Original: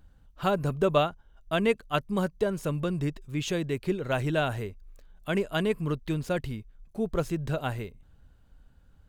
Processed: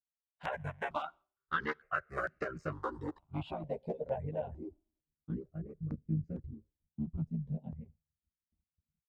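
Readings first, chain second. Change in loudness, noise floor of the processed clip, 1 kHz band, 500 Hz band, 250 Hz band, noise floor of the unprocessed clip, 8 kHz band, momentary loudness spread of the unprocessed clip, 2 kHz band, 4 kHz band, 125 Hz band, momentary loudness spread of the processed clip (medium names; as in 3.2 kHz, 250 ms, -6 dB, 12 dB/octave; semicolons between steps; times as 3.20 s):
-10.0 dB, under -85 dBFS, -7.5 dB, -13.0 dB, -11.0 dB, -59 dBFS, under -25 dB, 10 LU, -6.0 dB, -18.0 dB, -9.0 dB, 12 LU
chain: cycle switcher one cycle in 3, muted; level rider gain up to 16 dB; peaking EQ 240 Hz -7 dB 0.71 oct; two-slope reverb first 0.35 s, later 4.7 s, from -20 dB, DRR 18.5 dB; low-pass sweep 1.5 kHz -> 200 Hz, 2.22–5.61 s; pre-emphasis filter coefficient 0.9; compression 12:1, threshold -31 dBFS, peak gain reduction 9 dB; doubling 13 ms -2 dB; expander -44 dBFS; high-pass 55 Hz; reverb removal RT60 0.73 s; stepped phaser 2.2 Hz 340–3400 Hz; trim +2 dB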